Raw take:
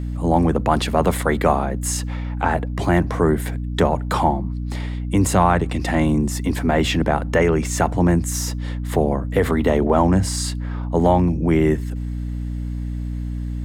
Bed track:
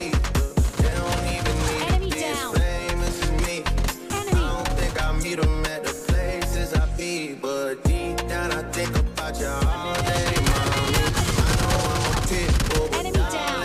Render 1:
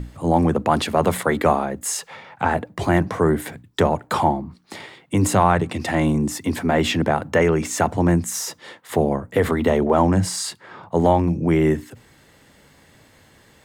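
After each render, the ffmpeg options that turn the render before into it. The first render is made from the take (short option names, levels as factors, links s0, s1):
-af "bandreject=f=60:t=h:w=6,bandreject=f=120:t=h:w=6,bandreject=f=180:t=h:w=6,bandreject=f=240:t=h:w=6,bandreject=f=300:t=h:w=6"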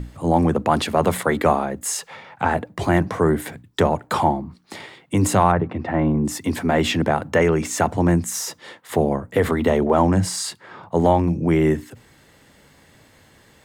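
-filter_complex "[0:a]asplit=3[s0][s1][s2];[s0]afade=t=out:st=5.51:d=0.02[s3];[s1]lowpass=1500,afade=t=in:st=5.51:d=0.02,afade=t=out:st=6.24:d=0.02[s4];[s2]afade=t=in:st=6.24:d=0.02[s5];[s3][s4][s5]amix=inputs=3:normalize=0"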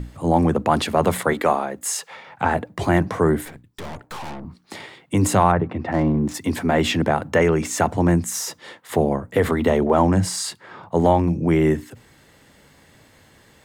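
-filter_complex "[0:a]asettb=1/sr,asplit=3[s0][s1][s2];[s0]atrim=end=1.334[s3];[s1]atrim=start=1.33:end=2.27,asetpts=PTS-STARTPTS,afade=t=in:d=0.004:c=qsin,afade=t=out:st=0.936:d=0.004:c=qsin,highpass=f=340:p=1[s4];[s2]atrim=start=2.266[s5];[s3][s4]acrossfade=d=0.004:c1=hsin:c2=qsin[s6];[s6][s5]acrossfade=d=0.004:c1=qsin:c2=hsin,asettb=1/sr,asplit=3[s7][s8][s9];[s7]atrim=end=3.454[s10];[s8]atrim=start=3.45:end=4.45,asetpts=PTS-STARTPTS,afade=t=in:d=0.004:c=qsin,afade=t=out:st=0.996:d=0.004:c=qsin,aeval=exprs='(tanh(39.8*val(0)+0.75)-tanh(0.75))/39.8':c=same[s11];[s9]atrim=start=4.446[s12];[s10][s11]acrossfade=d=0.004:c1=hsin:c2=qsin[s13];[s13][s12]acrossfade=d=0.004:c1=qsin:c2=hsin,asplit=3[s14][s15][s16];[s14]afade=t=out:st=5.91:d=0.02[s17];[s15]adynamicsmooth=sensitivity=6:basefreq=1500,afade=t=in:st=5.91:d=0.02,afade=t=out:st=6.33:d=0.02[s18];[s16]afade=t=in:st=6.33:d=0.02[s19];[s17][s18][s19]amix=inputs=3:normalize=0"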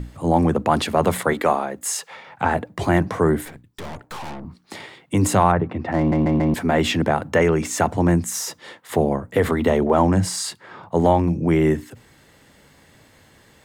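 -filter_complex "[0:a]asplit=5[s0][s1][s2][s3][s4];[s0]atrim=end=6.122[s5];[s1]atrim=start=5.978:end=6.122[s6];[s2]atrim=start=5.978:end=6.122[s7];[s3]atrim=start=5.978:end=6.122[s8];[s4]atrim=start=6.538[s9];[s5][s6]acrossfade=d=0.004:c1=hsin:c2=hsin[s10];[s10][s7]acrossfade=d=0.004:c1=hsin:c2=hsin[s11];[s11][s8]acrossfade=d=0.004:c1=hsin:c2=hsin[s12];[s12][s9]acrossfade=d=0.004:c1=hsin:c2=hsin"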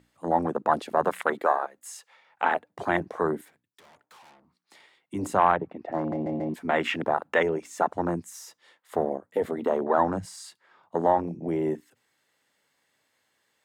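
-af "highpass=f=870:p=1,afwtdn=0.0562"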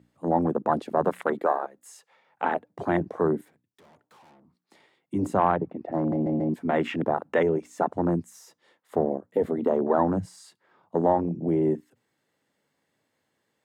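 -af "highpass=90,tiltshelf=f=640:g=7"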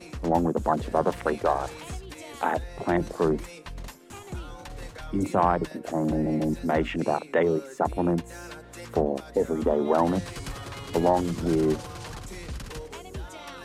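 -filter_complex "[1:a]volume=0.158[s0];[0:a][s0]amix=inputs=2:normalize=0"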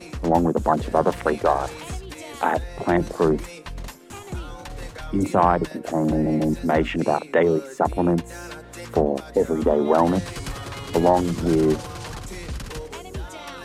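-af "volume=1.68"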